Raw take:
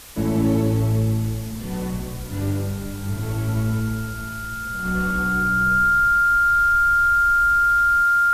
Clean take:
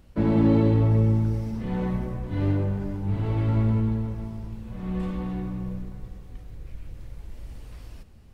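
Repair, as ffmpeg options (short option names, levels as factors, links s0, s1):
-af "adeclick=t=4,bandreject=f=1400:w=30,afwtdn=0.0089,asetnsamples=n=441:p=0,asendcmd='4.85 volume volume -4dB',volume=1"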